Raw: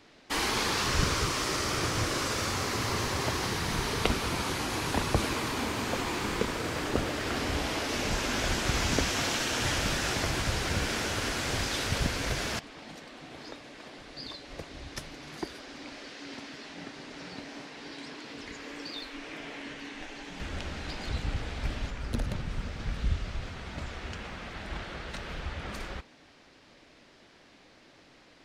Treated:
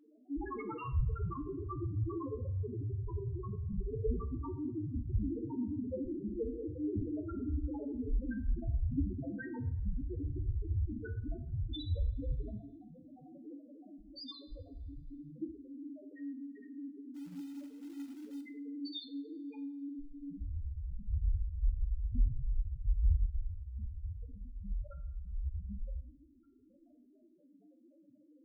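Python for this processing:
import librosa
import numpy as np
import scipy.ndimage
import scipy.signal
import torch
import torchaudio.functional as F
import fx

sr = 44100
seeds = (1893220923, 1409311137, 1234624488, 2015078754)

y = fx.clip_1bit(x, sr, at=(12.68, 13.31))
y = fx.spec_topn(y, sr, count=1)
y = fx.quant_float(y, sr, bits=2, at=(17.14, 18.41))
y = fx.rev_double_slope(y, sr, seeds[0], early_s=0.57, late_s=2.1, knee_db=-25, drr_db=6.0)
y = y * 10.0 ** (6.5 / 20.0)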